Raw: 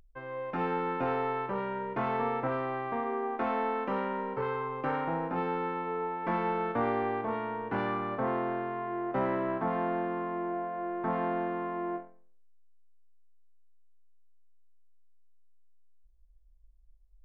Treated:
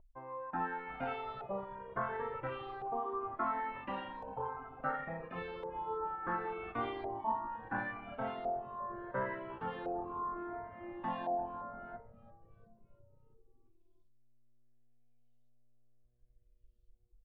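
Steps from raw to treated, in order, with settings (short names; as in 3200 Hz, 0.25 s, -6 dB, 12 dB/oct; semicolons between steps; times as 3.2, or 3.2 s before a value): LFO low-pass saw up 0.71 Hz 690–3700 Hz; dynamic EQ 2300 Hz, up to -7 dB, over -51 dBFS, Q 2.4; frequency-shifting echo 0.345 s, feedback 63%, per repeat -120 Hz, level -17 dB; reverb removal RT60 1.5 s; high shelf 3200 Hz +11.5 dB; cascading flanger falling 0.28 Hz; gain -2.5 dB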